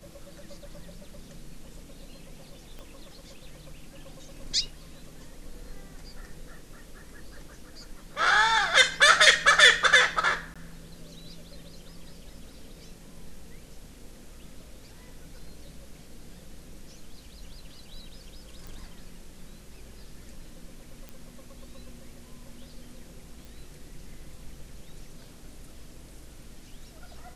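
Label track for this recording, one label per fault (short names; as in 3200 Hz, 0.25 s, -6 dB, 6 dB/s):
2.790000	2.790000	pop -30 dBFS
10.540000	10.560000	gap 16 ms
18.670000	18.670000	pop
21.090000	21.090000	pop -26 dBFS
23.450000	23.450000	pop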